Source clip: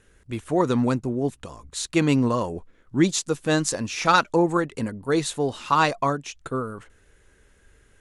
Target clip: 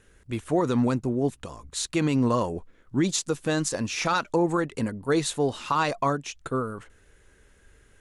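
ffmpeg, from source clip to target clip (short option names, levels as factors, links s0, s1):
-af "alimiter=limit=0.2:level=0:latency=1:release=66"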